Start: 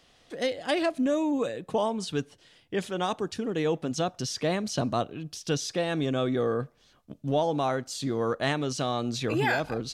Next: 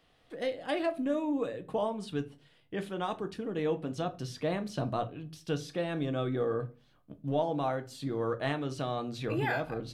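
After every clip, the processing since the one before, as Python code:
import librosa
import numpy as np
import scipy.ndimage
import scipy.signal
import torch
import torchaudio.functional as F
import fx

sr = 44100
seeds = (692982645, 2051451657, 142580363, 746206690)

y = fx.peak_eq(x, sr, hz=6300.0, db=-11.0, octaves=1.1)
y = fx.room_shoebox(y, sr, seeds[0], volume_m3=130.0, walls='furnished', distance_m=0.56)
y = y * librosa.db_to_amplitude(-5.5)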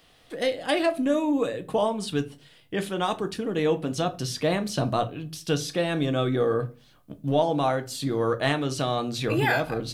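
y = fx.high_shelf(x, sr, hz=3700.0, db=9.5)
y = y * librosa.db_to_amplitude(7.0)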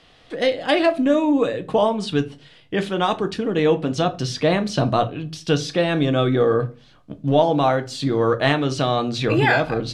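y = scipy.signal.sosfilt(scipy.signal.butter(2, 5500.0, 'lowpass', fs=sr, output='sos'), x)
y = y * librosa.db_to_amplitude(6.0)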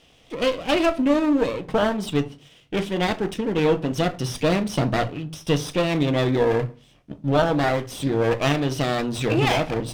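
y = fx.lower_of_two(x, sr, delay_ms=0.34)
y = y * librosa.db_to_amplitude(-1.5)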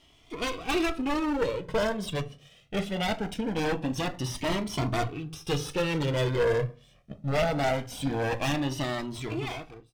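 y = fx.fade_out_tail(x, sr, length_s=1.35)
y = 10.0 ** (-16.0 / 20.0) * (np.abs((y / 10.0 ** (-16.0 / 20.0) + 3.0) % 4.0 - 2.0) - 1.0)
y = fx.comb_cascade(y, sr, direction='rising', hz=0.22)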